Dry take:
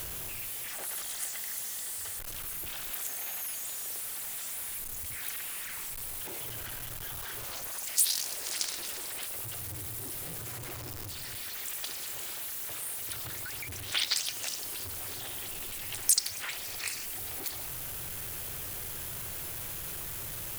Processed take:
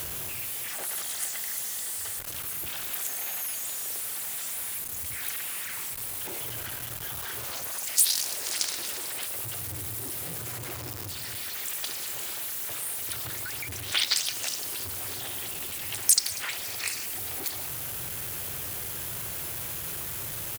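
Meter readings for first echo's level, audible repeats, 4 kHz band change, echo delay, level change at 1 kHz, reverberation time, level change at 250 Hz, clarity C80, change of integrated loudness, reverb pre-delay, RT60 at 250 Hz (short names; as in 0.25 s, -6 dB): -19.0 dB, 1, +4.0 dB, 0.194 s, +4.0 dB, none, +4.0 dB, none, +4.0 dB, none, none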